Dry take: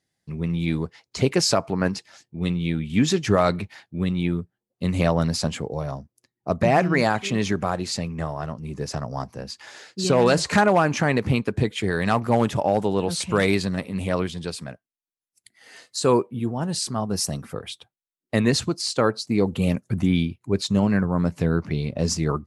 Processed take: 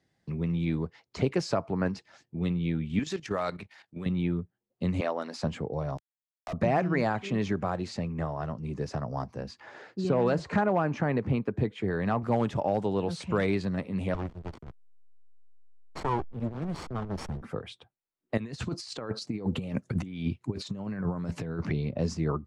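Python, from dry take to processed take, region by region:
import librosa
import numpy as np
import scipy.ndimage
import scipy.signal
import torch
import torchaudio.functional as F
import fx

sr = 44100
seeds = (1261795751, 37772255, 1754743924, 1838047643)

y = fx.chain(x, sr, fx.tilt_eq(slope=3.0),
    fx.level_steps(step_db=12), at=(2.99, 4.06))
y = fx.chain(y, sr, fx.brickwall_highpass(low_hz=190.0),
    fx.low_shelf(hz=320.0, db=-11.0), at=(5.0, 5.43))
y = fx.chain(y, sr, fx.highpass(hz=860.0, slope=12),
    fx.quant_companded(bits=2),
    fx.band_squash(depth_pct=40), at=(5.97, 6.53))
y = fx.chain(y, sr, fx.highpass(hz=57.0, slope=12),
    fx.high_shelf(hz=2700.0, db=-10.0), at=(9.6, 12.23))
y = fx.chain(y, sr, fx.lower_of_two(delay_ms=0.9),
    fx.peak_eq(hz=3500.0, db=-3.5, octaves=1.7),
    fx.backlash(play_db=-26.0), at=(14.14, 17.42))
y = fx.chain(y, sr, fx.high_shelf(hz=2200.0, db=6.5),
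    fx.over_compress(threshold_db=-26.0, ratio=-0.5), at=(18.37, 21.73))
y = scipy.signal.sosfilt(scipy.signal.butter(2, 7800.0, 'lowpass', fs=sr, output='sos'), y)
y = fx.high_shelf(y, sr, hz=2800.0, db=-10.5)
y = fx.band_squash(y, sr, depth_pct=40)
y = F.gain(torch.from_numpy(y), -5.0).numpy()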